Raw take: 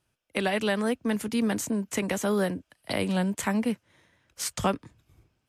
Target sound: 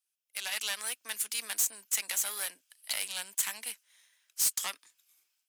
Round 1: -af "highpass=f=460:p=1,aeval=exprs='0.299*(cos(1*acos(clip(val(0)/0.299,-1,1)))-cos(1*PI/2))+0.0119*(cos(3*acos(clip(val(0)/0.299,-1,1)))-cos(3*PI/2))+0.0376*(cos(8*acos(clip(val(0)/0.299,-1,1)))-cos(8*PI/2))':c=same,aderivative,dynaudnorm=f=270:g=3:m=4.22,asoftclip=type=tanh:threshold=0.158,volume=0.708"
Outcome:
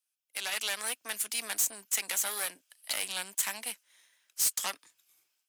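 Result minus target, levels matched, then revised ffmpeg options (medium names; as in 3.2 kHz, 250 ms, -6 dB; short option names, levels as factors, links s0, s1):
500 Hz band +5.0 dB
-af "highpass=f=1300:p=1,aeval=exprs='0.299*(cos(1*acos(clip(val(0)/0.299,-1,1)))-cos(1*PI/2))+0.0119*(cos(3*acos(clip(val(0)/0.299,-1,1)))-cos(3*PI/2))+0.0376*(cos(8*acos(clip(val(0)/0.299,-1,1)))-cos(8*PI/2))':c=same,aderivative,dynaudnorm=f=270:g=3:m=4.22,asoftclip=type=tanh:threshold=0.158,volume=0.708"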